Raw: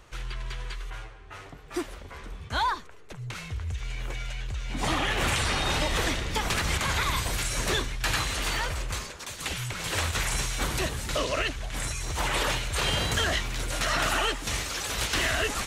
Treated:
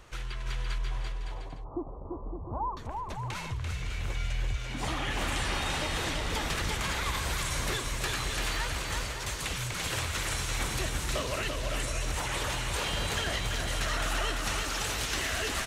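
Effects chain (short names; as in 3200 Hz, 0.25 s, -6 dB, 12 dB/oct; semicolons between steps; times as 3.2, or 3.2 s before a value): 0.78–2.77 steep low-pass 1100 Hz 72 dB/oct; compressor 3:1, threshold -32 dBFS, peak gain reduction 7.5 dB; on a send: bouncing-ball echo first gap 0.34 s, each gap 0.65×, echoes 5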